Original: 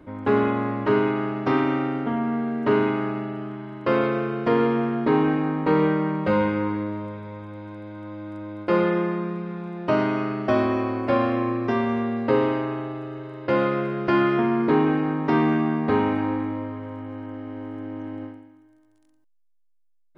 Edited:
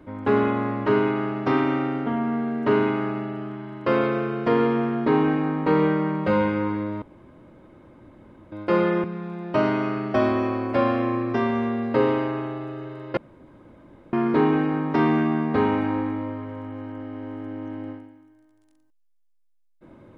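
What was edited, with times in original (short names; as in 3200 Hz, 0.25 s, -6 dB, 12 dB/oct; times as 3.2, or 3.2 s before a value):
7.02–8.52 room tone
9.04–9.38 cut
13.51–14.47 room tone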